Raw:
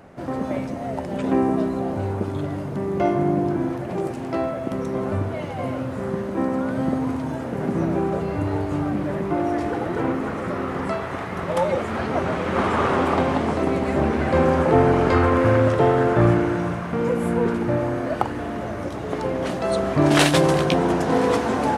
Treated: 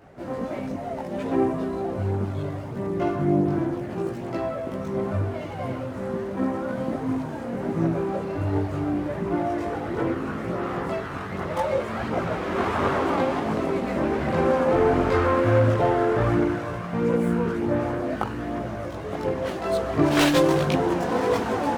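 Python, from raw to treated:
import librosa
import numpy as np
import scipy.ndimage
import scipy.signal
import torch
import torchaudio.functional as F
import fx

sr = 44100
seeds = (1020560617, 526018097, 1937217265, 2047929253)

y = fx.chorus_voices(x, sr, voices=2, hz=0.7, base_ms=19, depth_ms=2.1, mix_pct=55)
y = fx.running_max(y, sr, window=3)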